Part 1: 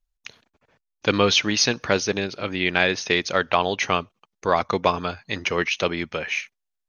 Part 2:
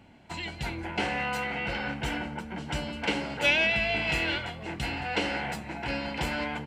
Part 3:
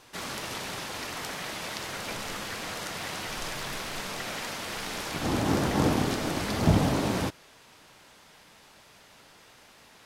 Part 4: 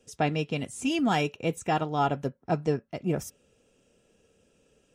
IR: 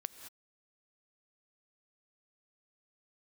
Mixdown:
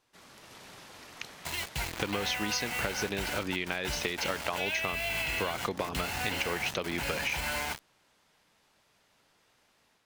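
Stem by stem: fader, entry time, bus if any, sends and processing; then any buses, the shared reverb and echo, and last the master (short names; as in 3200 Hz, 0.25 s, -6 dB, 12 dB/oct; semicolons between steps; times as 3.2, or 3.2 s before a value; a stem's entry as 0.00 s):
-2.0 dB, 0.95 s, bus B, no send, dry
-4.0 dB, 1.15 s, bus A, no send, bell 270 Hz -13.5 dB 1.6 oct; bit-crush 6-bit
-19.0 dB, 0.00 s, bus A, no send, compressor, threshold -29 dBFS, peak gain reduction 13 dB
off
bus A: 0.0 dB, AGC gain up to 5.5 dB; limiter -21.5 dBFS, peak gain reduction 9 dB
bus B: 0.0 dB, compressor, threshold -23 dBFS, peak gain reduction 8.5 dB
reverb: off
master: compressor, threshold -28 dBFS, peak gain reduction 8 dB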